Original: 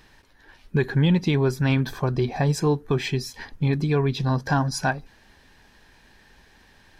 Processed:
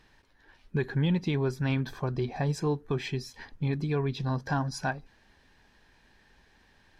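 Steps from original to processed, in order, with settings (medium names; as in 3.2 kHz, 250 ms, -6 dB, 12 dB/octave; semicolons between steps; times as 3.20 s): treble shelf 9.3 kHz -8.5 dB; trim -7 dB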